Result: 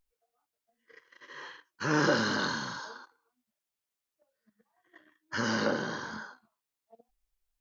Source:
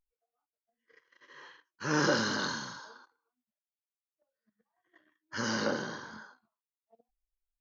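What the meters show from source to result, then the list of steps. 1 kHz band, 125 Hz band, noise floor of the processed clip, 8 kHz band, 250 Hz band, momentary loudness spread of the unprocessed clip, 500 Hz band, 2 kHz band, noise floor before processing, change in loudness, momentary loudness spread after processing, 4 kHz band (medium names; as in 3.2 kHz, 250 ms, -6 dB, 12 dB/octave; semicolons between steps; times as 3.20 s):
+2.5 dB, +2.5 dB, under -85 dBFS, no reading, +2.5 dB, 20 LU, +2.0 dB, +2.5 dB, under -85 dBFS, +1.5 dB, 21 LU, +0.5 dB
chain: dynamic bell 6.1 kHz, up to -5 dB, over -51 dBFS, Q 1.4; in parallel at +1.5 dB: compression, threshold -40 dBFS, peak gain reduction 16 dB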